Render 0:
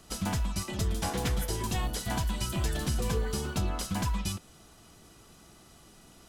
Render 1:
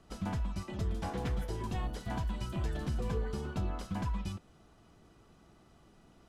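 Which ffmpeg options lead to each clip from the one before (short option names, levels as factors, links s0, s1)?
-af "lowpass=f=1500:p=1,volume=0.631"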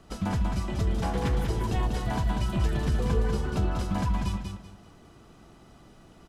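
-af "aecho=1:1:192|384|576|768:0.562|0.152|0.041|0.0111,volume=2.24"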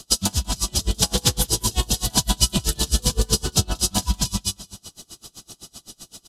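-af "aexciter=amount=9.8:drive=7.1:freq=3200,aresample=32000,aresample=44100,aeval=exprs='val(0)*pow(10,-30*(0.5-0.5*cos(2*PI*7.8*n/s))/20)':c=same,volume=2.51"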